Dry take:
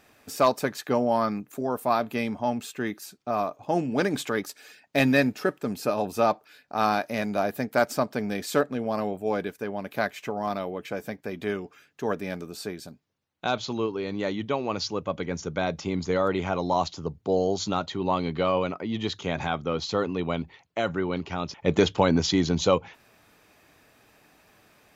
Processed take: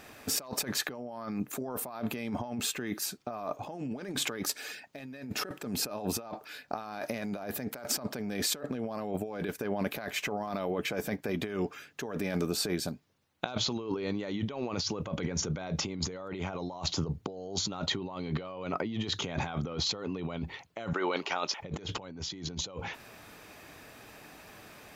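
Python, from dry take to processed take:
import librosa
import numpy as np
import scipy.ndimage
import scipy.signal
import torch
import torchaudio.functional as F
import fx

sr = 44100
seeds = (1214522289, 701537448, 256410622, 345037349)

y = fx.highpass(x, sr, hz=570.0, slope=12, at=(20.93, 21.6))
y = fx.over_compress(y, sr, threshold_db=-36.0, ratio=-1.0)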